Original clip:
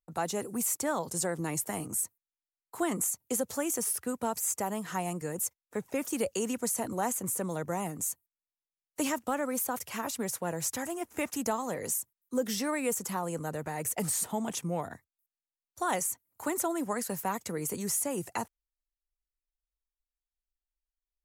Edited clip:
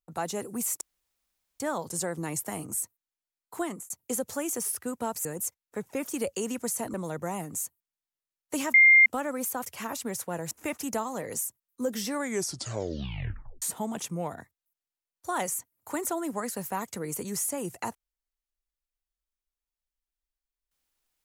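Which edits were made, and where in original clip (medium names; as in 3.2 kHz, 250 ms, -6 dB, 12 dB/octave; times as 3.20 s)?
0.81 s: insert room tone 0.79 s
2.79–3.11 s: fade out linear
4.46–5.24 s: delete
6.93–7.40 s: delete
9.20 s: add tone 2.11 kHz -13 dBFS 0.32 s
10.65–11.04 s: delete
12.64 s: tape stop 1.51 s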